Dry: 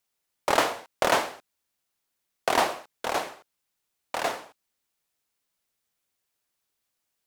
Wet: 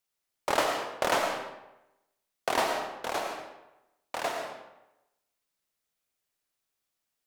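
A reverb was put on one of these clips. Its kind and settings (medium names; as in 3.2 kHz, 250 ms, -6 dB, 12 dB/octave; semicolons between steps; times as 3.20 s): algorithmic reverb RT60 0.93 s, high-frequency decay 0.75×, pre-delay 60 ms, DRR 3.5 dB; trim -4.5 dB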